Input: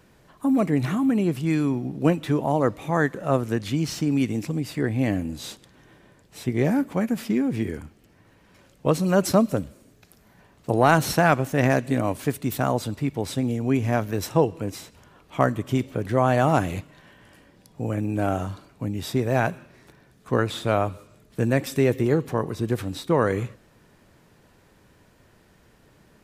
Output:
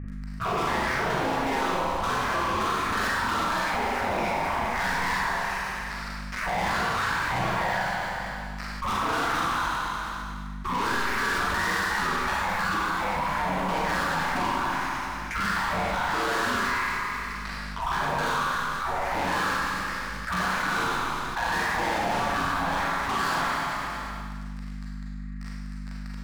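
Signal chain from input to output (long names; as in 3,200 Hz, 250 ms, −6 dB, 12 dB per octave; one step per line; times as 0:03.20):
spectrum averaged block by block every 50 ms
inverse Chebyshev low-pass filter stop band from 3,300 Hz, stop band 40 dB
flat-topped bell 540 Hz +16 dB
gate on every frequency bin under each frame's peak −30 dB weak
brickwall limiter −30 dBFS, peak gain reduction 10 dB
leveller curve on the samples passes 5
mains hum 50 Hz, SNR 24 dB
four-comb reverb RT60 1.3 s, combs from 33 ms, DRR −4.5 dB
envelope flattener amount 70%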